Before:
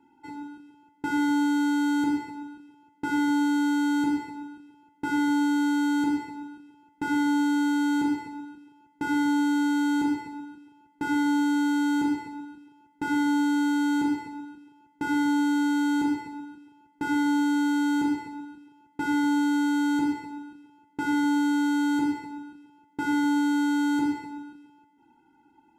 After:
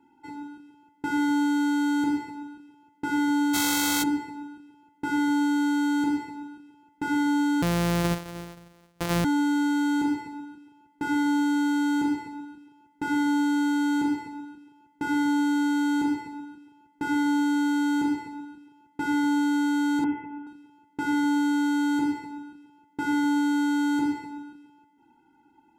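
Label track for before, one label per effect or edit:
3.530000	4.020000	spectral contrast reduction exponent 0.4
7.620000	9.250000	sorted samples in blocks of 256 samples
20.040000	20.470000	steep low-pass 3.1 kHz 96 dB/octave

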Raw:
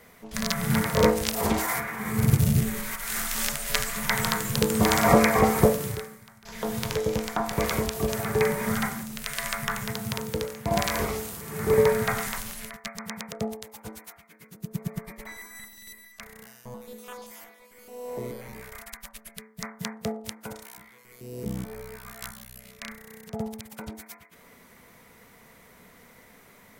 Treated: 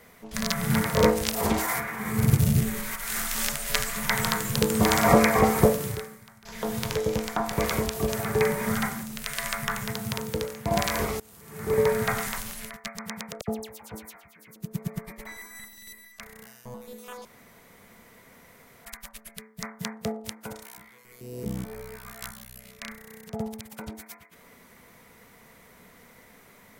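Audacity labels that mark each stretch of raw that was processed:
11.200000	12.060000	fade in, from -22 dB
13.410000	14.560000	phase dispersion lows, late by 69 ms, half as late at 2.4 kHz
17.250000	18.850000	room tone

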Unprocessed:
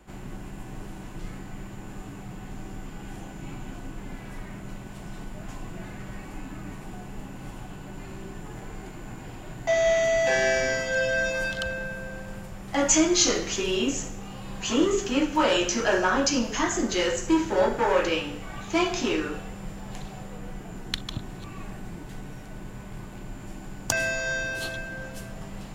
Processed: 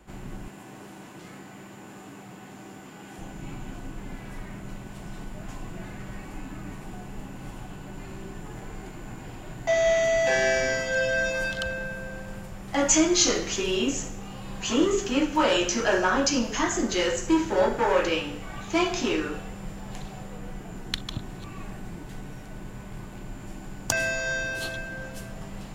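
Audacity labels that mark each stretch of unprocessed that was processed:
0.480000	3.190000	Bessel high-pass 240 Hz

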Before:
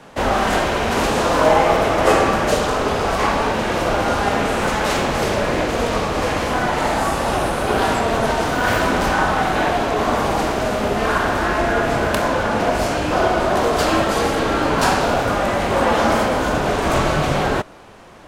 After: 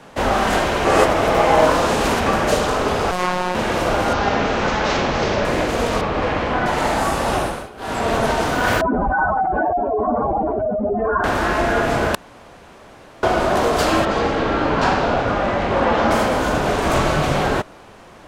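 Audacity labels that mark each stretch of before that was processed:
0.850000	2.260000	reverse
3.110000	3.550000	robot voice 181 Hz
4.130000	5.450000	steep low-pass 6.3 kHz
6.010000	6.660000	low-pass 3.3 kHz
7.380000	8.090000	dip -21.5 dB, fades 0.32 s
8.810000	11.240000	spectral contrast enhancement exponent 3
12.150000	13.230000	room tone
14.050000	16.110000	distance through air 140 m

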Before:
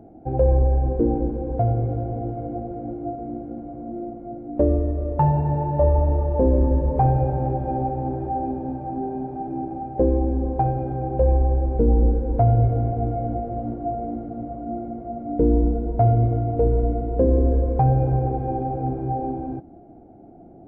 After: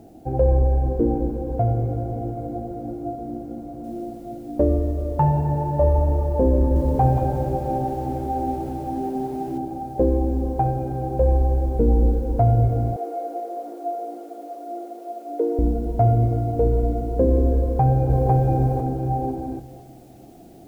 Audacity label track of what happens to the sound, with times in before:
3.840000	3.840000	noise floor step -67 dB -61 dB
6.580000	9.580000	bit-crushed delay 179 ms, feedback 35%, word length 8-bit, level -6 dB
12.960000	15.590000	steep high-pass 330 Hz 48 dB/octave
17.590000	18.300000	echo throw 500 ms, feedback 30%, level -0.5 dB

